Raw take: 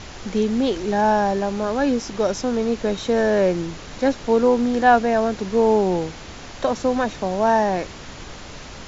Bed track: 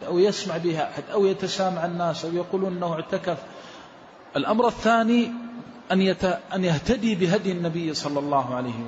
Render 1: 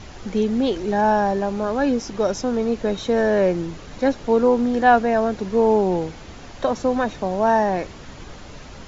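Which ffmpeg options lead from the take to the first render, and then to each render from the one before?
-af "afftdn=nr=6:nf=-38"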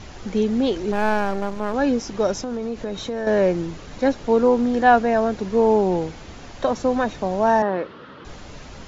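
-filter_complex "[0:a]asettb=1/sr,asplit=3[a][b][c];[a]atrim=end=0.924[d];[b]atrim=start=0.92:end=1.74,asetpts=PTS-STARTPTS,afade=t=in:d=0.004:c=qsin,afade=t=out:st=0.816:d=0.004:c=qsin,aeval=exprs='max(val(0),0)':c=same[e];[c]atrim=start=1.736[f];[d][e]acrossfade=d=0.004:c1=hsin:c2=qsin[g];[g][f]acrossfade=d=0.004:c1=qsin:c2=hsin,asettb=1/sr,asplit=3[h][i][j];[h]atrim=end=2.384[k];[i]atrim=start=2.38:end=3.27,asetpts=PTS-STARTPTS,afade=t=in:d=0.004:c=qsin,afade=t=out:st=0.886:d=0.004:c=qsin,acompressor=threshold=-24dB:ratio=4:attack=3.2:release=140:knee=1:detection=peak[l];[j]atrim=start=3.266[m];[k][l]acrossfade=d=0.004:c1=hsin:c2=qsin[n];[n][m]acrossfade=d=0.004:c1=qsin:c2=hsin,asettb=1/sr,asplit=3[o][p][q];[o]atrim=end=7.624[r];[p]atrim=start=7.62:end=8.25,asetpts=PTS-STARTPTS,afade=t=in:d=0.004:c=qsin,afade=t=out:st=0.626:d=0.004:c=qsin,highpass=190,equalizer=f=490:t=q:w=4:g=5,equalizer=f=730:t=q:w=4:g=-8,equalizer=f=1.3k:t=q:w=4:g=8,equalizer=f=2.3k:t=q:w=4:g=-8,lowpass=f=3.5k:w=0.5412,lowpass=f=3.5k:w=1.3066[s];[q]atrim=start=8.246[t];[r][s]acrossfade=d=0.004:c1=hsin:c2=qsin[u];[u][t]acrossfade=d=0.004:c1=qsin:c2=hsin"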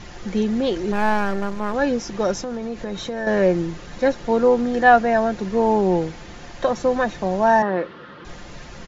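-af "equalizer=f=1.8k:t=o:w=0.36:g=4,aecho=1:1:5.7:0.37"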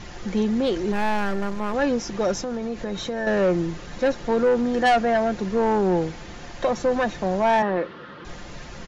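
-af "asoftclip=type=tanh:threshold=-13.5dB"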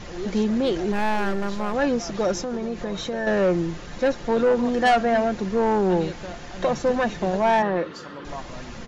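-filter_complex "[1:a]volume=-14dB[a];[0:a][a]amix=inputs=2:normalize=0"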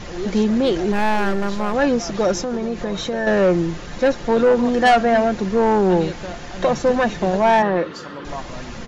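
-af "volume=4.5dB"

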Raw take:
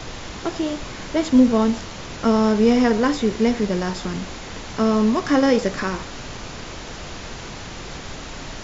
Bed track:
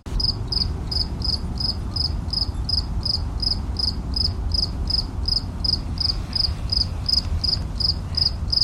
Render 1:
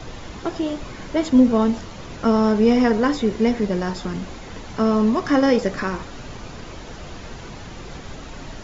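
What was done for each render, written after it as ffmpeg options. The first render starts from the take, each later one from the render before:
-af "afftdn=nr=7:nf=-35"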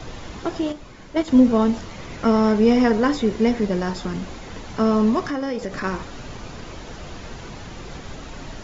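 -filter_complex "[0:a]asettb=1/sr,asplit=3[a][b][c];[a]atrim=end=0.724[d];[b]atrim=start=0.72:end=1.28,asetpts=PTS-STARTPTS,afade=t=in:d=0.004:c=qsin,afade=t=out:st=0.556:d=0.004:c=qsin,agate=range=-8dB:threshold=-21dB:ratio=16:release=100:detection=peak[e];[c]atrim=start=1.276[f];[d][e]acrossfade=d=0.004:c1=hsin:c2=qsin[g];[g][f]acrossfade=d=0.004:c1=qsin:c2=hsin,asettb=1/sr,asplit=3[h][i][j];[h]atrim=end=1.894[k];[i]atrim=start=1.89:end=2.56,asetpts=PTS-STARTPTS,afade=t=in:d=0.004:c=qsin,afade=t=out:st=0.666:d=0.004:c=qsin,equalizer=f=2.1k:t=o:w=0.29:g=6.5[l];[j]atrim=start=2.556[m];[k][l]acrossfade=d=0.004:c1=hsin:c2=qsin[n];[n][m]acrossfade=d=0.004:c1=qsin:c2=hsin,asettb=1/sr,asplit=3[o][p][q];[o]atrim=end=5.204[r];[p]atrim=start=5.2:end=5.84,asetpts=PTS-STARTPTS,afade=t=in:d=0.004:c=qsin,afade=t=out:st=0.636:d=0.004:c=qsin,acompressor=threshold=-25dB:ratio=3:attack=3.2:release=140:knee=1:detection=peak[s];[q]atrim=start=5.836[t];[r][s]acrossfade=d=0.004:c1=hsin:c2=qsin[u];[u][t]acrossfade=d=0.004:c1=qsin:c2=hsin"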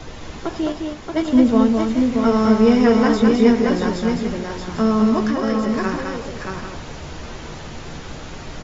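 -filter_complex "[0:a]asplit=2[a][b];[b]adelay=13,volume=-10.5dB[c];[a][c]amix=inputs=2:normalize=0,asplit=2[d][e];[e]aecho=0:1:211|628|796:0.596|0.596|0.299[f];[d][f]amix=inputs=2:normalize=0"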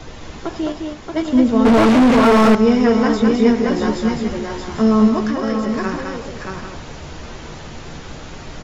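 -filter_complex "[0:a]asettb=1/sr,asplit=3[a][b][c];[a]atrim=end=1.654[d];[b]atrim=start=1.65:end=2.55,asetpts=PTS-STARTPTS,afade=t=in:d=0.004:c=qsin,afade=t=out:st=0.896:d=0.004:c=qsin,asplit=2[e][f];[f]highpass=f=720:p=1,volume=37dB,asoftclip=type=tanh:threshold=-4dB[g];[e][g]amix=inputs=2:normalize=0,lowpass=f=1.3k:p=1,volume=-6dB[h];[c]atrim=start=2.546[i];[d][h]acrossfade=d=0.004:c1=hsin:c2=qsin[j];[j][i]acrossfade=d=0.004:c1=qsin:c2=hsin,asettb=1/sr,asplit=3[k][l][m];[k]atrim=end=3.754[n];[l]atrim=start=3.75:end=5.08,asetpts=PTS-STARTPTS,afade=t=in:d=0.004:c=qsin,afade=t=out:st=1.326:d=0.004:c=qsin,asplit=2[o][p];[p]adelay=14,volume=-4dB[q];[o][q]amix=inputs=2:normalize=0,atrim=end_sample=58653[r];[m]atrim=start=5.076[s];[n][r]acrossfade=d=0.004:c1=hsin:c2=qsin[t];[t][s]acrossfade=d=0.004:c1=qsin:c2=hsin"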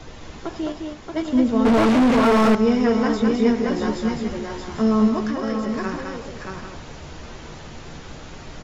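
-af "volume=-4.5dB"

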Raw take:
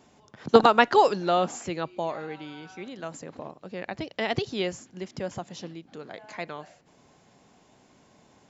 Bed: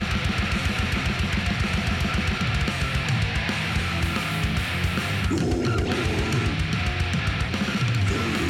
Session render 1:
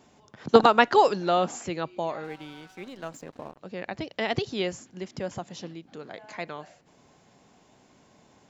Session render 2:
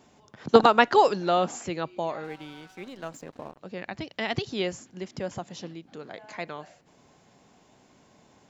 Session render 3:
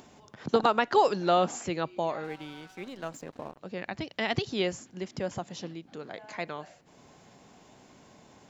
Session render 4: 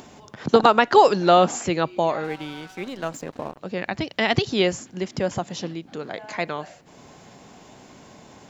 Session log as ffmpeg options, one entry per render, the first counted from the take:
-filter_complex "[0:a]asettb=1/sr,asplit=3[a][b][c];[a]atrim=end=2.244[d];[b]atrim=start=2.24:end=3.58,asetpts=PTS-STARTPTS,afade=t=in:d=0.004:c=qsin,afade=t=out:st=1.336:d=0.004:c=qsin,aeval=exprs='sgn(val(0))*max(abs(val(0))-0.00282,0)':c=same[e];[c]atrim=start=3.576[f];[d][e]acrossfade=d=0.004:c1=hsin:c2=qsin[g];[g][f]acrossfade=d=0.004:c1=qsin:c2=hsin"
-filter_complex "[0:a]asettb=1/sr,asplit=3[a][b][c];[a]atrim=end=3.784[d];[b]atrim=start=3.78:end=4.49,asetpts=PTS-STARTPTS,afade=t=in:d=0.004:c=qsin,afade=t=out:st=0.706:d=0.004:c=qsin,equalizer=f=500:w=1.5:g=-5.5[e];[c]atrim=start=4.486[f];[d][e]acrossfade=d=0.004:c1=hsin:c2=qsin[g];[g][f]acrossfade=d=0.004:c1=qsin:c2=hsin"
-af "alimiter=limit=-11.5dB:level=0:latency=1:release=266,acompressor=mode=upward:threshold=-49dB:ratio=2.5"
-af "volume=8.5dB"

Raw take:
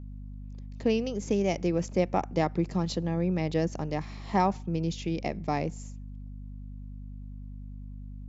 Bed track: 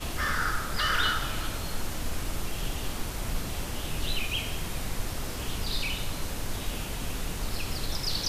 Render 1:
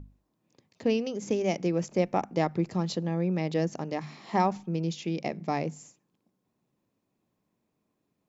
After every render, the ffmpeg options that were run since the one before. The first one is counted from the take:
-af "bandreject=f=50:t=h:w=6,bandreject=f=100:t=h:w=6,bandreject=f=150:t=h:w=6,bandreject=f=200:t=h:w=6,bandreject=f=250:t=h:w=6"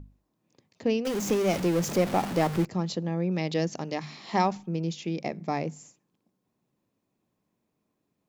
-filter_complex "[0:a]asettb=1/sr,asplit=3[a][b][c];[a]atrim=end=1.054[d];[b]atrim=start=1.05:end=2.65,asetpts=PTS-STARTPTS,afade=t=in:d=0.004:c=qsin,afade=t=out:st=1.596:d=0.004:c=qsin,aeval=exprs='val(0)+0.5*0.0376*sgn(val(0))':c=same[e];[c]atrim=start=2.646[f];[d][e]acrossfade=d=0.004:c1=hsin:c2=qsin[g];[g][f]acrossfade=d=0.004:c1=qsin:c2=hsin,asettb=1/sr,asplit=3[h][i][j];[h]atrim=end=3.314[k];[i]atrim=start=3.31:end=4.55,asetpts=PTS-STARTPTS,afade=t=in:d=0.004:c=qsin,afade=t=out:st=1.236:d=0.004:c=qsin,equalizer=f=4.2k:w=0.76:g=7.5[l];[j]atrim=start=4.546[m];[k][l]acrossfade=d=0.004:c1=hsin:c2=qsin[n];[n][m]acrossfade=d=0.004:c1=qsin:c2=hsin,asettb=1/sr,asplit=3[o][p][q];[o]atrim=end=5.134[r];[p]atrim=start=5.13:end=5.59,asetpts=PTS-STARTPTS,afade=t=in:d=0.004:c=qsin,afade=t=out:st=0.456:d=0.004:c=qsin,bandreject=f=2.9k:w=12[s];[q]atrim=start=5.586[t];[r][s]acrossfade=d=0.004:c1=hsin:c2=qsin[u];[u][t]acrossfade=d=0.004:c1=qsin:c2=hsin"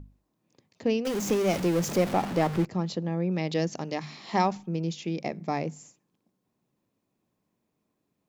-filter_complex "[0:a]asettb=1/sr,asplit=3[a][b][c];[a]atrim=end=2.134[d];[b]atrim=start=2.13:end=3.49,asetpts=PTS-STARTPTS,afade=t=in:d=0.004:c=qsin,afade=t=out:st=1.356:d=0.004:c=qsin,highshelf=f=5.9k:g=-7[e];[c]atrim=start=3.486[f];[d][e]acrossfade=d=0.004:c1=hsin:c2=qsin[g];[g][f]acrossfade=d=0.004:c1=qsin:c2=hsin"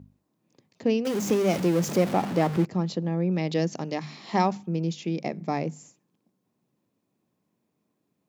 -af "highpass=120,lowshelf=f=350:g=4.5"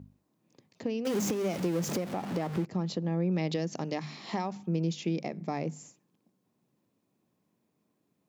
-af "acompressor=threshold=-24dB:ratio=10,alimiter=limit=-20.5dB:level=0:latency=1:release=347"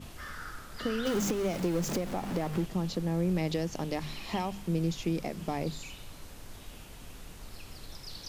-filter_complex "[1:a]volume=-14dB[a];[0:a][a]amix=inputs=2:normalize=0"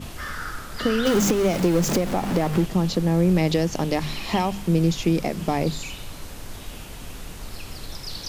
-af "volume=10dB"

